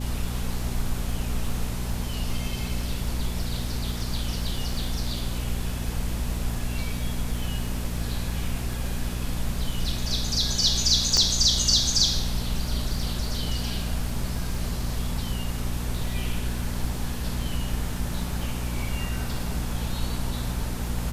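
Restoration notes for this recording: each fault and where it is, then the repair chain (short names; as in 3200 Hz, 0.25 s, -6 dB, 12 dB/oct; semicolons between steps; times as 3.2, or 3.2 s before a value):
crackle 20/s -33 dBFS
hum 60 Hz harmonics 4 -31 dBFS
11.17 pop -10 dBFS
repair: de-click; de-hum 60 Hz, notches 4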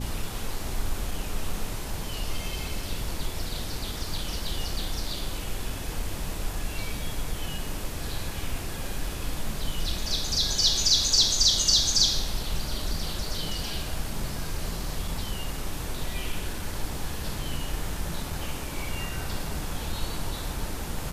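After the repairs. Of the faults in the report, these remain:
11.17 pop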